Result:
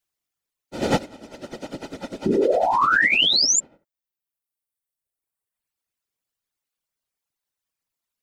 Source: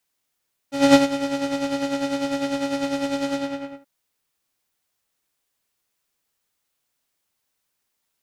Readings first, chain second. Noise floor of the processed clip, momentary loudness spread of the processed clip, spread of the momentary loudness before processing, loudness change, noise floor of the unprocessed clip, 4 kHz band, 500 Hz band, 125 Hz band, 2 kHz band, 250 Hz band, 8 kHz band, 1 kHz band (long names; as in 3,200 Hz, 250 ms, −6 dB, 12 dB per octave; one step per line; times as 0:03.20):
below −85 dBFS, 20 LU, 13 LU, +4.0 dB, −77 dBFS, +10.0 dB, −0.5 dB, +3.5 dB, +10.0 dB, −7.0 dB, +12.5 dB, +4.5 dB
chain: gain on one half-wave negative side −3 dB
sound drawn into the spectrogram rise, 0:02.25–0:03.60, 270–7,500 Hz −13 dBFS
reverb reduction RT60 1.7 s
random phases in short frames
level −5 dB